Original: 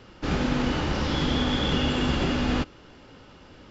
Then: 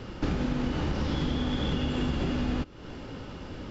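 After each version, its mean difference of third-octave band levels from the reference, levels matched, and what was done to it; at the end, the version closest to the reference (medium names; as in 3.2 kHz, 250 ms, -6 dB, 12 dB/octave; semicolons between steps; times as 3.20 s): 4.5 dB: bass shelf 480 Hz +7 dB; compression 6:1, threshold -31 dBFS, peak gain reduction 15.5 dB; trim +4.5 dB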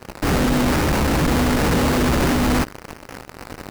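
6.5 dB: in parallel at -8 dB: fuzz box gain 50 dB, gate -44 dBFS; on the sum: sample-rate reducer 3.4 kHz, jitter 20%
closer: first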